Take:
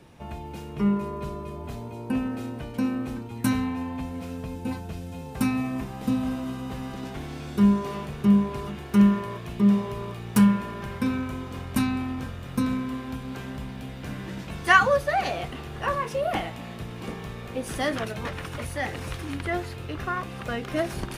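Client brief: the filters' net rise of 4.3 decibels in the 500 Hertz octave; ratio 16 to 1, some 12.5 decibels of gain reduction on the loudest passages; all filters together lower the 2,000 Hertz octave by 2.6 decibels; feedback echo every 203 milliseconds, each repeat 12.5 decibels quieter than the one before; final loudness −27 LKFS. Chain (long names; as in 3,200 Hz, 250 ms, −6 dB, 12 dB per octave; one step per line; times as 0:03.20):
parametric band 500 Hz +5.5 dB
parametric band 2,000 Hz −4 dB
downward compressor 16 to 1, threshold −25 dBFS
repeating echo 203 ms, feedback 24%, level −12.5 dB
level +5 dB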